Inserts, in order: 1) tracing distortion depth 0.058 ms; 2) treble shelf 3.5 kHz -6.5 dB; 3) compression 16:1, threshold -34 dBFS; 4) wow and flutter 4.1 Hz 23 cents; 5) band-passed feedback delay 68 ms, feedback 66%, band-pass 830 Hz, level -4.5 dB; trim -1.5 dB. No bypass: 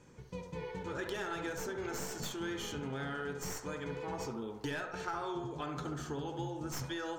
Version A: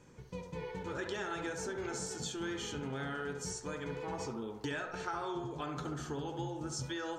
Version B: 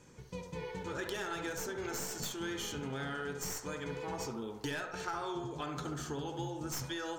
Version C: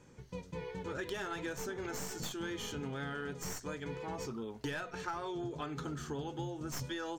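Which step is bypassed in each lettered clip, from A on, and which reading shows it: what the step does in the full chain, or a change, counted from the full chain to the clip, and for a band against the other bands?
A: 1, 8 kHz band +2.0 dB; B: 2, 8 kHz band +4.0 dB; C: 5, echo-to-direct -5.5 dB to none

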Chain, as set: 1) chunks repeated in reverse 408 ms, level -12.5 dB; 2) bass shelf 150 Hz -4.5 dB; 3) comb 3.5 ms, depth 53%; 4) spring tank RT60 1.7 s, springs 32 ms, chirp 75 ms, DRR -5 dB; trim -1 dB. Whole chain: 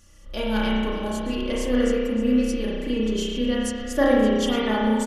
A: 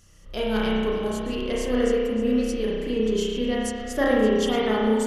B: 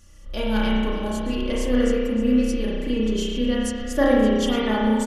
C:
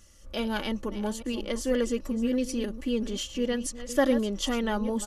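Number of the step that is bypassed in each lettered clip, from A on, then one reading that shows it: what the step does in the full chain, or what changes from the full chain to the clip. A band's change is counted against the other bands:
3, 500 Hz band +2.5 dB; 2, 125 Hz band +2.5 dB; 4, crest factor change +2.5 dB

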